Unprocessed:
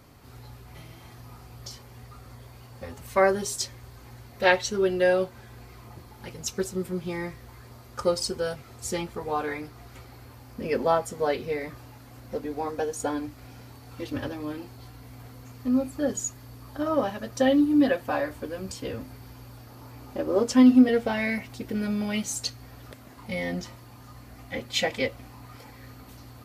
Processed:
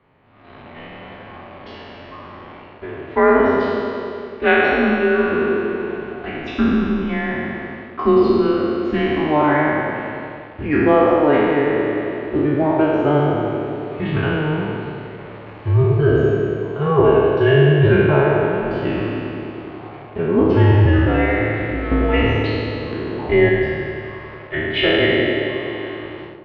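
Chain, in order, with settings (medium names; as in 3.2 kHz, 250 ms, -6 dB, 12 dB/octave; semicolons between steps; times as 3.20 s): spectral sustain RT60 2.60 s; 21.91–23.49 s: peaking EQ 430 Hz +13 dB 2.4 oct; level rider gain up to 11.5 dB; in parallel at -6.5 dB: bit crusher 5-bit; on the sum: mistuned SSB -150 Hz 240–3100 Hz; on a send: band-passed feedback delay 92 ms, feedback 75%, band-pass 430 Hz, level -5.5 dB; on the sum: trim -4.5 dB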